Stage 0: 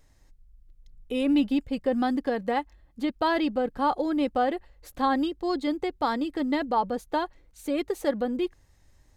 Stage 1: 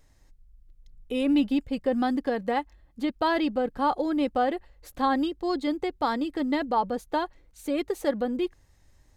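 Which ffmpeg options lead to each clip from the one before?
ffmpeg -i in.wav -af anull out.wav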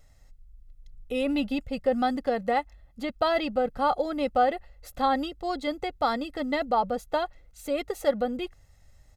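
ffmpeg -i in.wav -af "aecho=1:1:1.5:0.57" out.wav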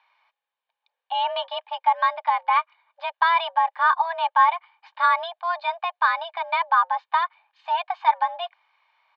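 ffmpeg -i in.wav -af "highpass=frequency=370:width_type=q:width=0.5412,highpass=frequency=370:width_type=q:width=1.307,lowpass=frequency=3400:width_type=q:width=0.5176,lowpass=frequency=3400:width_type=q:width=0.7071,lowpass=frequency=3400:width_type=q:width=1.932,afreqshift=340,volume=5.5dB" out.wav

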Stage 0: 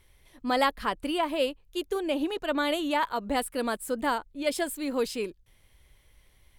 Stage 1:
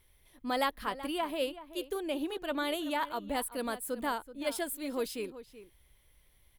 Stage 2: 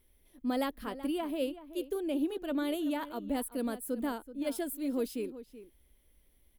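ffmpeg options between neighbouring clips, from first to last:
ffmpeg -i in.wav -filter_complex "[0:a]equalizer=frequency=3500:width_type=o:width=0.21:gain=2.5,aexciter=amount=2.2:drive=5.5:freq=10000,asplit=2[link_01][link_02];[link_02]adelay=379,volume=-14dB,highshelf=frequency=4000:gain=-8.53[link_03];[link_01][link_03]amix=inputs=2:normalize=0,volume=-6dB" out.wav
ffmpeg -i in.wav -af "equalizer=frequency=125:width_type=o:width=1:gain=-10,equalizer=frequency=250:width_type=o:width=1:gain=8,equalizer=frequency=1000:width_type=o:width=1:gain=-7,equalizer=frequency=2000:width_type=o:width=1:gain=-5,equalizer=frequency=4000:width_type=o:width=1:gain=-5,equalizer=frequency=8000:width_type=o:width=1:gain=-4" out.wav

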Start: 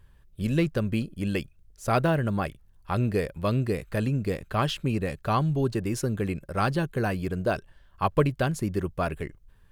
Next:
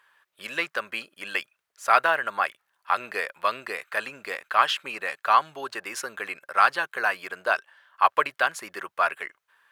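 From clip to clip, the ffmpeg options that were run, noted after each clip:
ffmpeg -i in.wav -af "highpass=880,equalizer=frequency=1400:width_type=o:width=2.5:gain=11.5" out.wav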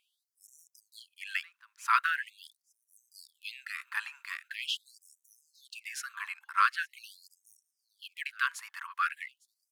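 ffmpeg -i in.wav -af "aecho=1:1:857:0.0708,afftfilt=real='re*gte(b*sr/1024,810*pow(5600/810,0.5+0.5*sin(2*PI*0.43*pts/sr)))':imag='im*gte(b*sr/1024,810*pow(5600/810,0.5+0.5*sin(2*PI*0.43*pts/sr)))':win_size=1024:overlap=0.75,volume=-5.5dB" out.wav

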